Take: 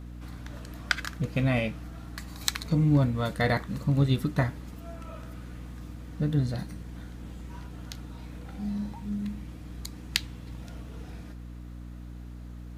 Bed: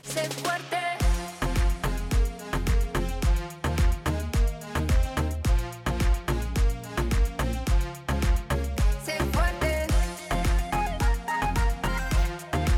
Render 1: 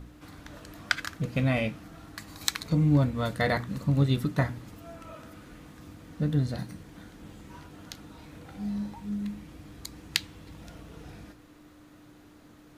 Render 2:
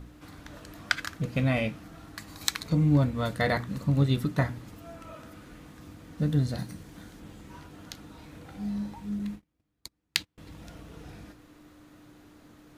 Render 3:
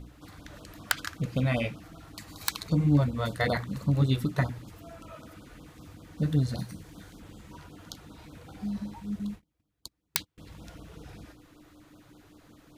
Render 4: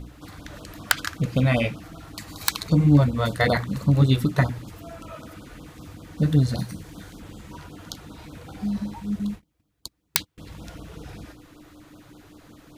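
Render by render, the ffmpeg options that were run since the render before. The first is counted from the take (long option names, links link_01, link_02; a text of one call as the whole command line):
ffmpeg -i in.wav -af "bandreject=frequency=60:width_type=h:width=4,bandreject=frequency=120:width_type=h:width=4,bandreject=frequency=180:width_type=h:width=4,bandreject=frequency=240:width_type=h:width=4" out.wav
ffmpeg -i in.wav -filter_complex "[0:a]asettb=1/sr,asplit=3[link_01][link_02][link_03];[link_01]atrim=end=6.184[link_04];[link_02]atrim=start=6.18:end=7.2,asetpts=PTS-STARTPTS,afade=type=in:duration=0.004:curve=qsin,afade=type=out:start_time=1.016:duration=0.004:curve=qsin,bass=frequency=250:gain=1,treble=frequency=4000:gain=4[link_05];[link_03]atrim=start=7.196[link_06];[link_04][link_05]acrossfade=duration=0.004:curve1=hsin:curve2=qsin[link_07];[link_07][link_06]acrossfade=duration=0.004:curve1=qsin:curve2=hsin,asettb=1/sr,asplit=3[link_08][link_09][link_10];[link_08]atrim=end=9.194[link_11];[link_09]atrim=start=9.19:end=10.38,asetpts=PTS-STARTPTS,afade=type=in:duration=0.004:curve=qsin,afade=type=out:start_time=1.186:duration=0.004:curve=qsin,agate=range=-33dB:threshold=-41dB:ratio=16:release=100:detection=peak[link_12];[link_10]atrim=start=10.376[link_13];[link_11][link_12]acrossfade=duration=0.004:curve1=hsin:curve2=qsin[link_14];[link_14][link_13]acrossfade=duration=0.004:curve1=qsin:curve2=hsin" out.wav
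ffmpeg -i in.wav -af "aeval=exprs='(mod(2.99*val(0)+1,2)-1)/2.99':channel_layout=same,afftfilt=real='re*(1-between(b*sr/1024,200*pow(2200/200,0.5+0.5*sin(2*PI*5.2*pts/sr))/1.41,200*pow(2200/200,0.5+0.5*sin(2*PI*5.2*pts/sr))*1.41))':imag='im*(1-between(b*sr/1024,200*pow(2200/200,0.5+0.5*sin(2*PI*5.2*pts/sr))/1.41,200*pow(2200/200,0.5+0.5*sin(2*PI*5.2*pts/sr))*1.41))':win_size=1024:overlap=0.75" out.wav
ffmpeg -i in.wav -af "volume=6.5dB" out.wav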